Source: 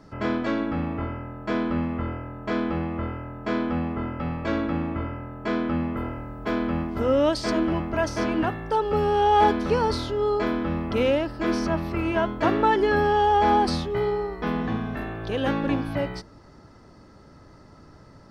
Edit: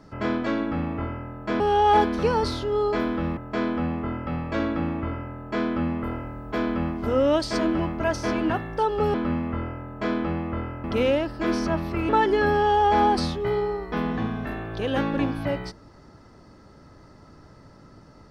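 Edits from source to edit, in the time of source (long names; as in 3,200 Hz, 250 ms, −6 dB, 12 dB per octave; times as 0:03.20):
0:01.60–0:03.30: swap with 0:09.07–0:10.84
0:12.09–0:12.59: remove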